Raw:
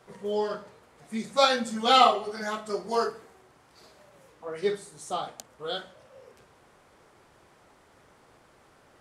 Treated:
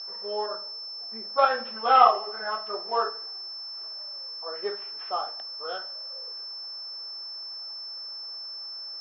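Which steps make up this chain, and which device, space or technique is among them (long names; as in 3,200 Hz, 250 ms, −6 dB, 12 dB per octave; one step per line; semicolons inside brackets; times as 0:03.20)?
0:00.46–0:01.38: Bessel low-pass filter 1,200 Hz, order 2
toy sound module (linearly interpolated sample-rate reduction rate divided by 4×; switching amplifier with a slow clock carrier 5,300 Hz; loudspeaker in its box 620–4,100 Hz, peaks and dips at 1,200 Hz +3 dB, 2,200 Hz −9 dB, 3,600 Hz −6 dB)
level +3 dB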